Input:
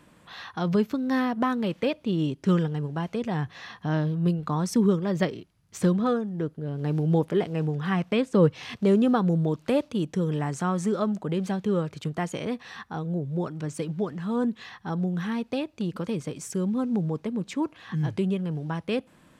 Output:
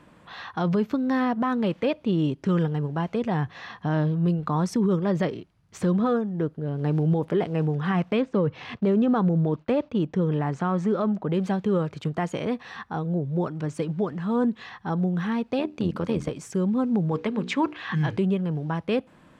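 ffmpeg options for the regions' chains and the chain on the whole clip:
-filter_complex "[0:a]asettb=1/sr,asplit=3[a][b][c];[a]atrim=end=8.194[d];[b]atrim=start=8.19:end=11.33,asetpts=PTS-STARTPTS,afade=t=in:d=0.004:c=qsin,afade=t=out:st=3.136:d=0.004:c=qsin,agate=range=-33dB:threshold=-46dB:ratio=3:release=100:detection=peak,adynamicsmooth=sensitivity=3:basefreq=4.4k[e];[c]atrim=start=11.326[f];[d][e]acrossfade=d=0.004:c1=hsin:c2=qsin[g];[g][f]acrossfade=d=0.004:c1=qsin:c2=hsin,asettb=1/sr,asplit=3[h][i][j];[h]atrim=end=15.594[k];[i]atrim=start=15.59:end=16.31,asetpts=PTS-STARTPTS,afade=t=in:d=0.004:c=qsin,afade=t=out:st=0.716:d=0.004:c=qsin,bandreject=f=50:t=h:w=6,bandreject=f=100:t=h:w=6,bandreject=f=150:t=h:w=6,bandreject=f=200:t=h:w=6,bandreject=f=250:t=h:w=6,bandreject=f=300:t=h:w=6,tremolo=f=83:d=0.667,acontrast=31[l];[j]atrim=start=16.306[m];[k][l]acrossfade=d=0.004:c1=hsin:c2=qsin[n];[n][m]acrossfade=d=0.004:c1=qsin:c2=hsin,asettb=1/sr,asplit=3[o][p][q];[o]atrim=end=17.114[r];[p]atrim=start=17.11:end=18.17,asetpts=PTS-STARTPTS,afade=t=in:d=0.004:c=qsin,afade=t=out:st=1.056:d=0.004:c=qsin,equalizer=f=2.4k:w=0.4:g=10,bandreject=f=60:t=h:w=6,bandreject=f=120:t=h:w=6,bandreject=f=180:t=h:w=6,bandreject=f=240:t=h:w=6,bandreject=f=300:t=h:w=6,bandreject=f=360:t=h:w=6,bandreject=f=420:t=h:w=6,bandreject=f=480:t=h:w=6[s];[q]atrim=start=18.166[t];[r][s]acrossfade=d=0.004:c1=hsin:c2=qsin[u];[u][t]acrossfade=d=0.004:c1=qsin:c2=hsin,lowpass=f=3.3k:p=1,equalizer=f=860:t=o:w=1.6:g=2,alimiter=limit=-18dB:level=0:latency=1:release=27,volume=2.5dB"

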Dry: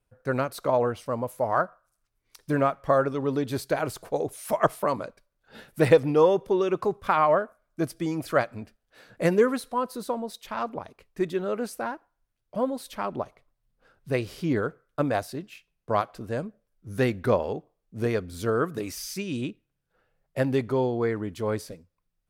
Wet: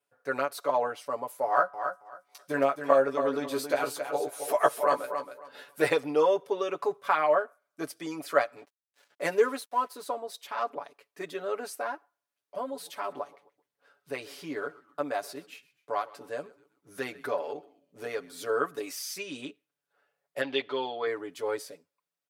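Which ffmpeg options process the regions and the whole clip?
-filter_complex "[0:a]asettb=1/sr,asplit=3[a][b][c];[a]atrim=end=1.464[d];[b]atrim=start=1.46:end=5.88,asetpts=PTS-STARTPTS,afade=t=in:d=0.004:c=qsin,afade=t=out:st=4.416:d=0.004:c=qsin,asplit=2[e][f];[f]adelay=15,volume=-5dB[g];[e][g]amix=inputs=2:normalize=0,atrim=end_sample=194922,aecho=1:1:273|546|819:0.398|0.0717|0.0129,atrim=end_sample=194922[h];[c]atrim=start=5.876[i];[d][h]acrossfade=d=0.004:c1=hsin:c2=qsin[j];[j][i]acrossfade=d=0.004:c1=qsin:c2=hsin,asettb=1/sr,asplit=3[k][l][m];[k]atrim=end=8.564[n];[l]atrim=start=8.56:end=10.06,asetpts=PTS-STARTPTS,afade=t=in:d=0.004:c=qsin,afade=t=out:st=1.496:d=0.004:c=qsin,highpass=130,bandreject=f=1.2k:w=21,aeval=exprs='sgn(val(0))*max(abs(val(0))-0.00282,0)':c=same[o];[m]atrim=start=10.056[p];[n][o]acrossfade=d=0.004:c1=hsin:c2=qsin[q];[q][p]acrossfade=d=0.004:c1=qsin:c2=hsin,asettb=1/sr,asplit=3[r][s][t];[r]atrim=end=12.594[u];[s]atrim=start=12.59:end=18.5,asetpts=PTS-STARTPTS,afade=t=in:d=0.004:c=qsin,afade=t=out:st=5.906:d=0.004:c=qsin,acompressor=threshold=-30dB:ratio=1.5:attack=3.2:release=140:knee=1:detection=peak,asplit=4[v][w][x][y];[w]adelay=128,afreqshift=-86,volume=-20dB[z];[x]adelay=256,afreqshift=-172,volume=-27.1dB[aa];[y]adelay=384,afreqshift=-258,volume=-34.3dB[ab];[v][z][aa][ab]amix=inputs=4:normalize=0,atrim=end_sample=260631[ac];[t]atrim=start=18.496[ad];[u][ac]acrossfade=d=0.004:c1=hsin:c2=qsin[ae];[ae][ad]acrossfade=d=0.004:c1=qsin:c2=hsin,asettb=1/sr,asplit=3[af][ag][ah];[af]atrim=end=20.414[ai];[ag]atrim=start=20.41:end=21.07,asetpts=PTS-STARTPTS,afade=t=in:d=0.004:c=qsin,afade=t=out:st=0.656:d=0.004:c=qsin,lowpass=f=3.4k:t=q:w=4.2,lowshelf=f=190:g=-10[aj];[ah]atrim=start=21.066[ak];[ai][aj]acrossfade=d=0.004:c1=hsin:c2=qsin[al];[al][ak]acrossfade=d=0.004:c1=qsin:c2=hsin,highpass=450,aecho=1:1:7:0.82,volume=-3dB"

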